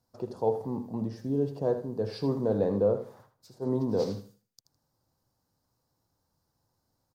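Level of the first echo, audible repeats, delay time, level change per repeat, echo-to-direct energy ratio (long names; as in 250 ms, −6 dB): −11.0 dB, 2, 79 ms, −13.0 dB, −11.0 dB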